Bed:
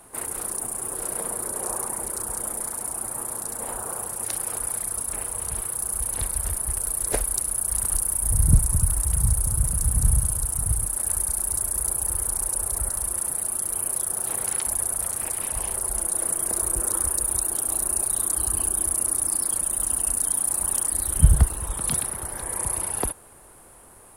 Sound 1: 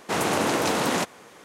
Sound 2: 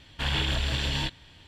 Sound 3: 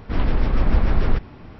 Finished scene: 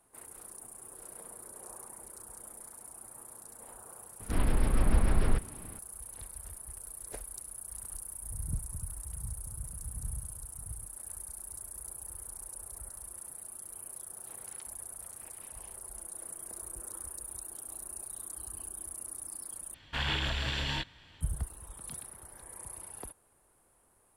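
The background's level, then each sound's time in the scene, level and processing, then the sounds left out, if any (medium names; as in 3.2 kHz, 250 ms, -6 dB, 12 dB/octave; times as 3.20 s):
bed -18.5 dB
4.20 s: add 3 -7.5 dB
19.74 s: replace with 2 -6.5 dB + peaking EQ 1.4 kHz +5.5 dB 1.9 oct
not used: 1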